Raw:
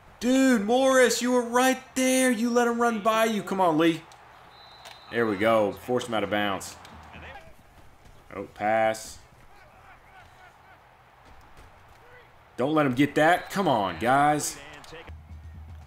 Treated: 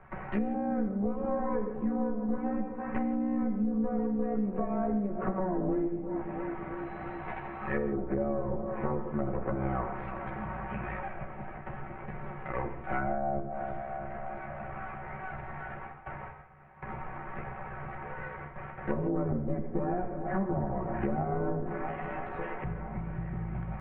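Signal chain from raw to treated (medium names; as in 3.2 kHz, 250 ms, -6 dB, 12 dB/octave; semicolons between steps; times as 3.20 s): comb filter that takes the minimum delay 8.8 ms; steep low-pass 2.3 kHz 36 dB/octave; feedback echo behind a low-pass 223 ms, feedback 55%, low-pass 1.2 kHz, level -16.5 dB; gate with hold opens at -45 dBFS; bass shelf 180 Hz +5.5 dB; low-pass that closes with the level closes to 540 Hz, closed at -23.5 dBFS; compression, threshold -27 dBFS, peak gain reduction 9.5 dB; granular stretch 1.5×, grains 32 ms; gated-style reverb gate 190 ms flat, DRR 8.5 dB; three bands compressed up and down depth 70%; trim +1 dB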